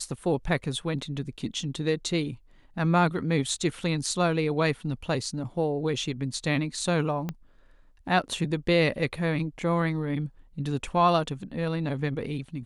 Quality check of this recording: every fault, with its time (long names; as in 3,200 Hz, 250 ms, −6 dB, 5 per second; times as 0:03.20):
0:07.29: click −18 dBFS